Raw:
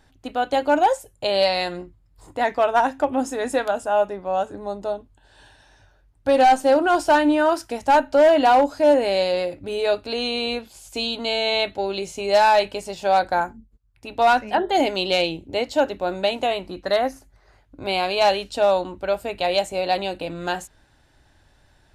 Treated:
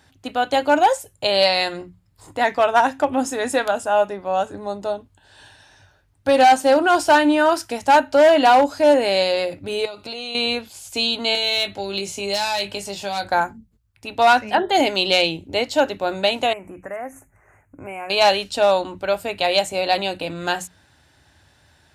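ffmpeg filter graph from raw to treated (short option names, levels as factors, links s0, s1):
-filter_complex "[0:a]asettb=1/sr,asplit=3[s0][s1][s2];[s0]atrim=end=9.854[s3];[s1]atrim=start=9.85:end=10.35,asetpts=PTS-STARTPTS,afade=t=in:d=0.004:c=qsin,afade=t=out:st=0.496:d=0.004:c=qsin,bandreject=f=1700:w=5.2,acompressor=threshold=0.0316:ratio=8:attack=3.2:release=140:knee=1:detection=peak,aecho=1:1:5.7:0.41,atrim=end_sample=22050[s4];[s2]atrim=start=10.346[s5];[s3][s4]acrossfade=d=0.004:c1=hsin:c2=qsin[s6];[s6][s5]acrossfade=d=0.004:c1=qsin:c2=hsin,asettb=1/sr,asplit=3[s7][s8][s9];[s7]atrim=end=11.354[s10];[s8]atrim=start=11.35:end=13.29,asetpts=PTS-STARTPTS,afade=t=in:d=0.004:c=qsin,afade=t=out:st=1.936:d=0.004:c=qsin,acrossover=split=180|3000[s11][s12][s13];[s12]acompressor=threshold=0.0316:ratio=2.5:attack=3.2:release=140:knee=2.83:detection=peak[s14];[s11][s14][s13]amix=inputs=3:normalize=0,asoftclip=type=hard:threshold=0.133,asplit=2[s15][s16];[s16]adelay=20,volume=0.398[s17];[s15][s17]amix=inputs=2:normalize=0,atrim=end_sample=85554[s18];[s9]atrim=start=13.286[s19];[s10][s18]acrossfade=d=0.004:c1=hsin:c2=qsin[s20];[s20][s19]acrossfade=d=0.004:c1=qsin:c2=hsin,asettb=1/sr,asplit=3[s21][s22][s23];[s21]atrim=end=16.534[s24];[s22]atrim=start=16.53:end=18.1,asetpts=PTS-STARTPTS,afade=t=in:d=0.004:c=qsin,afade=t=out:st=1.566:d=0.004:c=qsin,acompressor=threshold=0.0126:ratio=2:attack=3.2:release=140:knee=1:detection=peak,asuperstop=centerf=4100:order=8:qfactor=0.95[s25];[s23]atrim=start=18.096[s26];[s24][s25]acrossfade=d=0.004:c1=hsin:c2=qsin[s27];[s27][s26]acrossfade=d=0.004:c1=qsin:c2=hsin,highpass=f=69:w=0.5412,highpass=f=69:w=1.3066,equalizer=f=410:w=0.39:g=-5,bandreject=f=60:t=h:w=6,bandreject=f=120:t=h:w=6,bandreject=f=180:t=h:w=6,volume=2"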